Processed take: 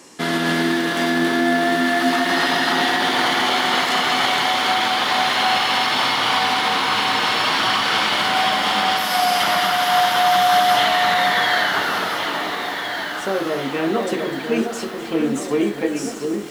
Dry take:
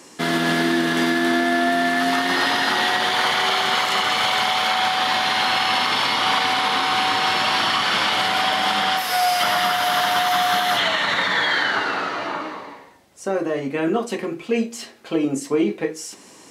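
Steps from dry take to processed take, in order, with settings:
on a send: delay that swaps between a low-pass and a high-pass 706 ms, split 880 Hz, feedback 68%, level −4.5 dB
on the sum: feedback echo at a low word length 253 ms, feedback 80%, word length 6 bits, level −13.5 dB

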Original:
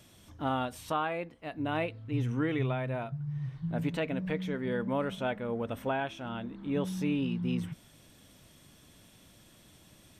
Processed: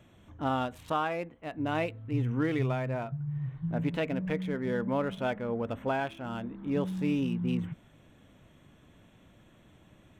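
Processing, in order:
adaptive Wiener filter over 9 samples
level +1.5 dB

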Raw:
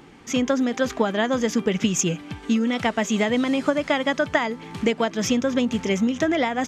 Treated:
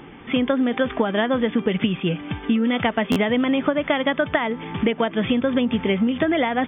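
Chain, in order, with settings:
downward compressor 3 to 1, threshold −24 dBFS, peak gain reduction 7.5 dB
linear-phase brick-wall low-pass 3,600 Hz
buffer that repeats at 0:03.11, samples 512, times 3
level +6 dB

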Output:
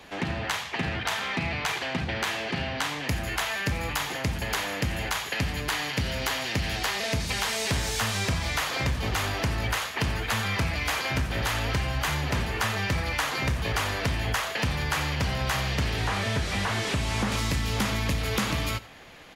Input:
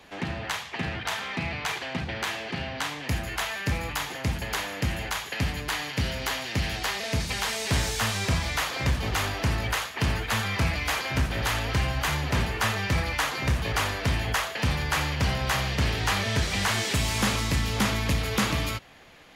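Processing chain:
0:15.97–0:17.32: linear delta modulator 64 kbit/s, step −41 dBFS
downward compressor 4 to 1, threshold −28 dBFS, peak gain reduction 7 dB
on a send: single-tap delay 90 ms −19.5 dB
on the sum: level +3.5 dB

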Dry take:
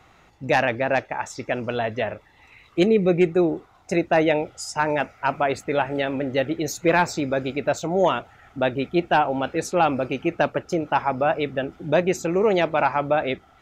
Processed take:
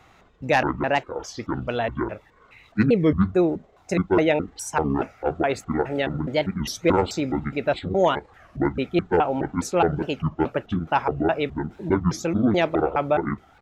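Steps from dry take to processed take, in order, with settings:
pitch shifter gated in a rhythm −10.5 semitones, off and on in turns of 209 ms
wow of a warped record 33 1/3 rpm, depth 250 cents

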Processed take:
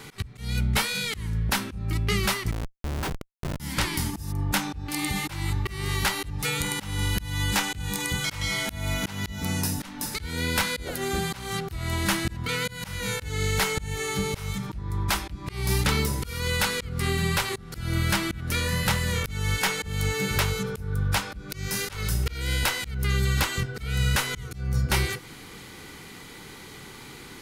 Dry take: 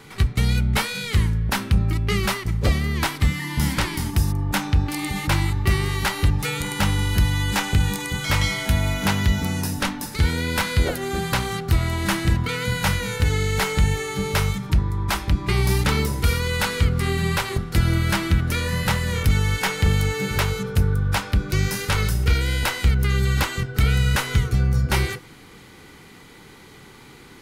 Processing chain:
high-shelf EQ 2,700 Hz +5 dB
in parallel at +2 dB: downward compressor 6 to 1, threshold −30 dBFS, peak gain reduction 15.5 dB
on the sum: volume swells 246 ms
0:02.51–0:03.60: comparator with hysteresis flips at −17.5 dBFS
level −6 dB

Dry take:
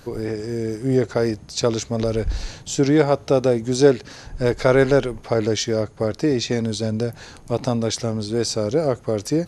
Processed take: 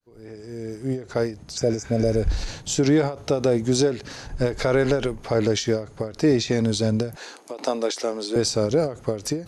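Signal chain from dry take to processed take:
fade in at the beginning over 1.92 s
0:01.60–0:02.20: healed spectral selection 780–4,700 Hz after
0:07.16–0:08.36: high-pass filter 310 Hz 24 dB per octave
brickwall limiter −12 dBFS, peak gain reduction 9.5 dB
every ending faded ahead of time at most 150 dB per second
level +2 dB

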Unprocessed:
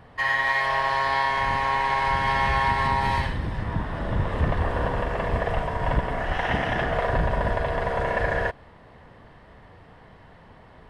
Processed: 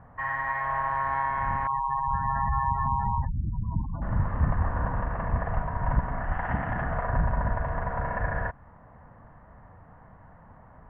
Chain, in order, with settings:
dynamic equaliser 560 Hz, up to −6 dB, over −41 dBFS, Q 1.2
low-pass filter 1,500 Hz 24 dB per octave
0:01.67–0:04.02: gate on every frequency bin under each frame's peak −15 dB strong
parametric band 390 Hz −11 dB 0.77 octaves

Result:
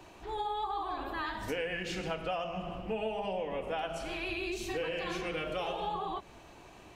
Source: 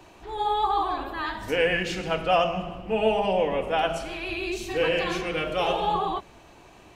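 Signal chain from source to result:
downward compressor 6 to 1, threshold −30 dBFS, peak gain reduction 12.5 dB
level −2.5 dB

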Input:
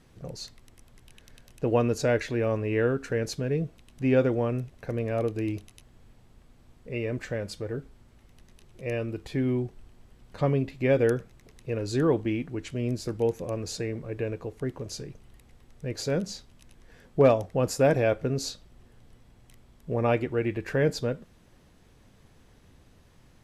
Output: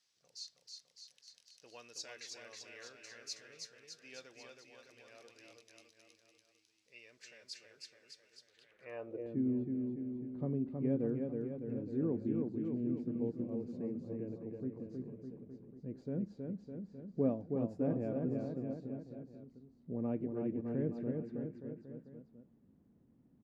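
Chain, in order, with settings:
bouncing-ball delay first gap 320 ms, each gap 0.9×, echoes 5
band-pass filter sweep 5,200 Hz → 230 Hz, 0:08.46–0:09.37
level −4 dB

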